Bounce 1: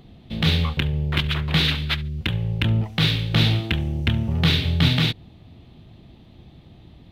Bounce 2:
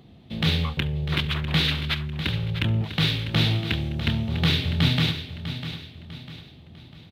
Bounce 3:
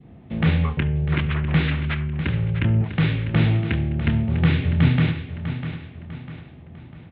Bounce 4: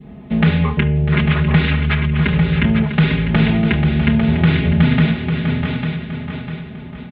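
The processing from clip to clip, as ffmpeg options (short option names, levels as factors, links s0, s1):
-af "highpass=69,aecho=1:1:649|1298|1947|2596:0.282|0.11|0.0429|0.0167,volume=0.75"
-af "lowpass=f=2200:w=0.5412,lowpass=f=2200:w=1.3066,bandreject=f=104.7:t=h:w=4,bandreject=f=209.4:t=h:w=4,bandreject=f=314.1:t=h:w=4,bandreject=f=418.8:t=h:w=4,bandreject=f=523.5:t=h:w=4,bandreject=f=628.2:t=h:w=4,bandreject=f=732.9:t=h:w=4,bandreject=f=837.6:t=h:w=4,bandreject=f=942.3:t=h:w=4,bandreject=f=1047:t=h:w=4,bandreject=f=1151.7:t=h:w=4,bandreject=f=1256.4:t=h:w=4,bandreject=f=1361.1:t=h:w=4,bandreject=f=1465.8:t=h:w=4,bandreject=f=1570.5:t=h:w=4,bandreject=f=1675.2:t=h:w=4,bandreject=f=1779.9:t=h:w=4,bandreject=f=1884.6:t=h:w=4,bandreject=f=1989.3:t=h:w=4,bandreject=f=2094:t=h:w=4,bandreject=f=2198.7:t=h:w=4,bandreject=f=2303.4:t=h:w=4,bandreject=f=2408.1:t=h:w=4,bandreject=f=2512.8:t=h:w=4,bandreject=f=2617.5:t=h:w=4,bandreject=f=2722.2:t=h:w=4,bandreject=f=2826.9:t=h:w=4,bandreject=f=2931.6:t=h:w=4,bandreject=f=3036.3:t=h:w=4,bandreject=f=3141:t=h:w=4,bandreject=f=3245.7:t=h:w=4,adynamicequalizer=threshold=0.00501:dfrequency=980:dqfactor=0.74:tfrequency=980:tqfactor=0.74:attack=5:release=100:ratio=0.375:range=2:mode=cutabove:tftype=bell,volume=1.78"
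-filter_complex "[0:a]aecho=1:1:4.8:0.9,acompressor=threshold=0.1:ratio=2,asplit=2[s0][s1];[s1]aecho=0:1:849:0.447[s2];[s0][s2]amix=inputs=2:normalize=0,volume=2.24"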